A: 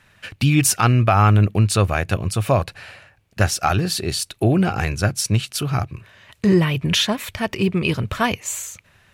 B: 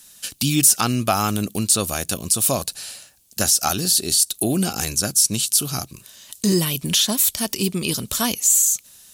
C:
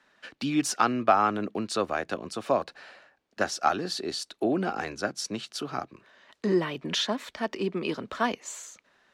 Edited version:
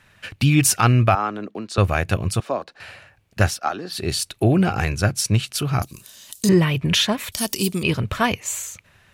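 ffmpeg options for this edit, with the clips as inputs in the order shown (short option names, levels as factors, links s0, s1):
-filter_complex "[2:a]asplit=3[s0][s1][s2];[1:a]asplit=2[s3][s4];[0:a]asplit=6[s5][s6][s7][s8][s9][s10];[s5]atrim=end=1.152[s11];[s0]atrim=start=1.148:end=1.782[s12];[s6]atrim=start=1.778:end=2.402[s13];[s1]atrim=start=2.398:end=2.802[s14];[s7]atrim=start=2.798:end=3.63[s15];[s2]atrim=start=3.47:end=4.04[s16];[s8]atrim=start=3.88:end=5.822[s17];[s3]atrim=start=5.818:end=6.492[s18];[s9]atrim=start=6.488:end=7.322[s19];[s4]atrim=start=7.318:end=7.832[s20];[s10]atrim=start=7.828[s21];[s11][s12]acrossfade=d=0.004:c1=hsin:c2=hsin[s22];[s22][s13]acrossfade=d=0.004:c1=hsin:c2=hsin[s23];[s23][s14]acrossfade=d=0.004:c1=hsin:c2=hsin[s24];[s24][s15]acrossfade=d=0.004:c1=hsin:c2=hsin[s25];[s25][s16]acrossfade=d=0.16:c1=tri:c2=tri[s26];[s26][s17]acrossfade=d=0.16:c1=tri:c2=tri[s27];[s27][s18]acrossfade=d=0.004:c1=hsin:c2=hsin[s28];[s28][s19]acrossfade=d=0.004:c1=hsin:c2=hsin[s29];[s29][s20]acrossfade=d=0.004:c1=hsin:c2=hsin[s30];[s30][s21]acrossfade=d=0.004:c1=hsin:c2=hsin"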